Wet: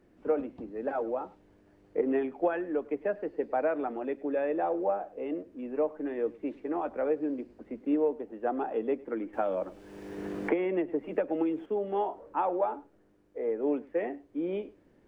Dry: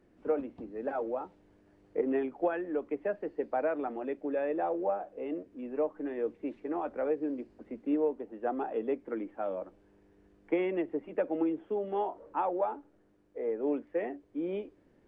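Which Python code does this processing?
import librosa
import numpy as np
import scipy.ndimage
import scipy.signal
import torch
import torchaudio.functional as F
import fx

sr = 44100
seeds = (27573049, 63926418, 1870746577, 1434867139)

y = x + 10.0 ** (-21.5 / 20.0) * np.pad(x, (int(102 * sr / 1000.0), 0))[:len(x)]
y = fx.band_squash(y, sr, depth_pct=100, at=(9.33, 11.66))
y = y * 10.0 ** (2.0 / 20.0)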